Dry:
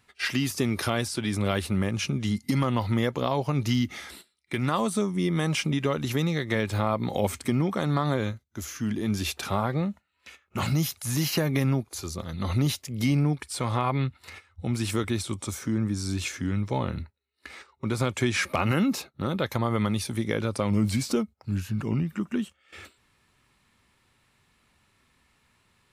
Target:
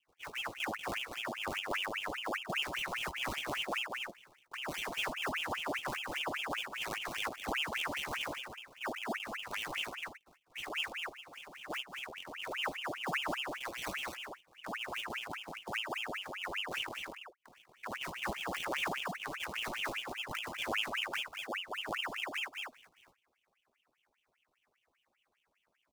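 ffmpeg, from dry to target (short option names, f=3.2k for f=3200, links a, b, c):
-filter_complex "[0:a]highshelf=f=4k:g=-11,asplit=3[a][b][c];[a]afade=t=out:st=10.85:d=0.02[d];[b]acompressor=threshold=-38dB:ratio=4,afade=t=in:st=10.85:d=0.02,afade=t=out:st=11.69:d=0.02[e];[c]afade=t=in:st=11.69:d=0.02[f];[d][e][f]amix=inputs=3:normalize=0,flanger=delay=18.5:depth=6.8:speed=2.6,acrusher=samples=22:mix=1:aa=0.000001,asuperstop=centerf=1400:order=8:qfactor=0.6,aecho=1:1:195.3|236.2:0.282|0.631,aeval=exprs='val(0)*sin(2*PI*1700*n/s+1700*0.75/5*sin(2*PI*5*n/s))':c=same,volume=-7dB"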